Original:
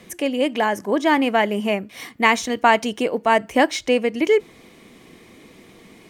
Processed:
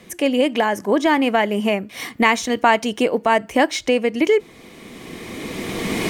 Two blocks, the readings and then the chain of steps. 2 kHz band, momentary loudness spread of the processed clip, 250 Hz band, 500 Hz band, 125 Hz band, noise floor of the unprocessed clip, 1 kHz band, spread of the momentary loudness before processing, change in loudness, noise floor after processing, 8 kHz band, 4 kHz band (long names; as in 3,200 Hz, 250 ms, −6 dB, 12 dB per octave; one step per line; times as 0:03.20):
+0.5 dB, 14 LU, +2.5 dB, +1.5 dB, can't be measured, −49 dBFS, +0.5 dB, 6 LU, +1.0 dB, −45 dBFS, +2.5 dB, +2.0 dB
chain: camcorder AGC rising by 15 dB per second